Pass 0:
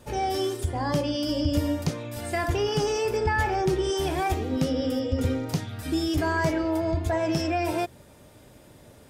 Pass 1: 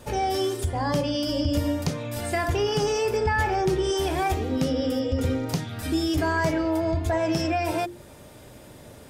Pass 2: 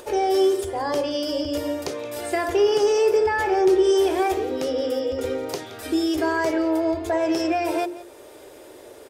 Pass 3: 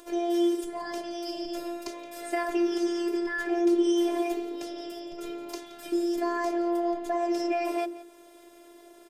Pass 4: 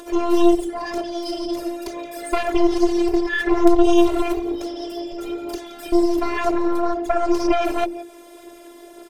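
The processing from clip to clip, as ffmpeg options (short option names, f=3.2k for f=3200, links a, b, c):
-filter_complex "[0:a]asplit=2[a][b];[b]acompressor=threshold=-34dB:ratio=6,volume=1dB[c];[a][c]amix=inputs=2:normalize=0,bandreject=f=50:t=h:w=6,bandreject=f=100:t=h:w=6,bandreject=f=150:t=h:w=6,bandreject=f=200:t=h:w=6,bandreject=f=250:t=h:w=6,bandreject=f=300:t=h:w=6,bandreject=f=350:t=h:w=6,volume=-1dB"
-af "lowshelf=f=260:t=q:w=3:g=-12.5,acompressor=mode=upward:threshold=-40dB:ratio=2.5,aecho=1:1:172:0.133"
-af "afftfilt=real='hypot(re,im)*cos(PI*b)':imag='0':win_size=512:overlap=0.75,volume=-4.5dB"
-af "aeval=exprs='0.237*(cos(1*acos(clip(val(0)/0.237,-1,1)))-cos(1*PI/2))+0.0944*(cos(4*acos(clip(val(0)/0.237,-1,1)))-cos(4*PI/2))+0.0211*(cos(5*acos(clip(val(0)/0.237,-1,1)))-cos(5*PI/2))+0.0211*(cos(6*acos(clip(val(0)/0.237,-1,1)))-cos(6*PI/2))+0.0106*(cos(8*acos(clip(val(0)/0.237,-1,1)))-cos(8*PI/2))':c=same,aphaser=in_gain=1:out_gain=1:delay=3.9:decay=0.33:speed=2:type=sinusoidal,volume=6dB"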